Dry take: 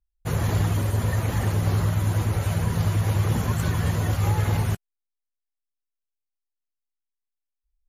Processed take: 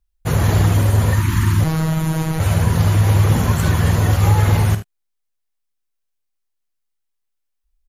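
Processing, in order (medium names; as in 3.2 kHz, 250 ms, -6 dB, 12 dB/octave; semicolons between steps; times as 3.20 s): 1.14–1.60 s: spectral selection erased 380–870 Hz; early reflections 48 ms -11.5 dB, 76 ms -14 dB; 1.64–2.40 s: robot voice 159 Hz; trim +7.5 dB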